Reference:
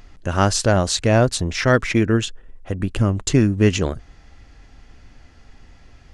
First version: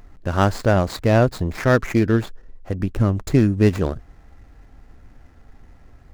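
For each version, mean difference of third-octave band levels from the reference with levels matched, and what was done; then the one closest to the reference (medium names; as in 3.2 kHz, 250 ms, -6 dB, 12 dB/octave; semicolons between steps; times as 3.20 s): 3.5 dB: median filter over 15 samples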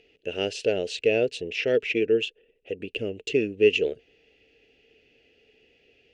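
8.5 dB: two resonant band-passes 1.1 kHz, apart 2.6 oct; trim +5 dB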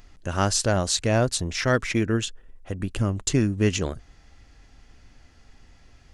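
1.0 dB: treble shelf 4.5 kHz +6.5 dB; trim -6 dB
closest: third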